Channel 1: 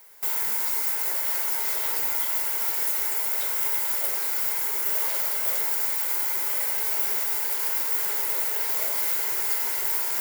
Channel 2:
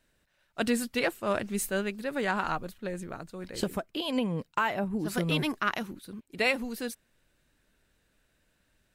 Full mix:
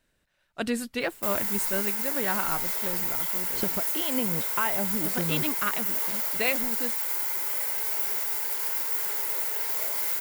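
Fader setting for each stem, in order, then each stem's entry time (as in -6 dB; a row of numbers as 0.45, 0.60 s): -3.0, -1.0 dB; 1.00, 0.00 s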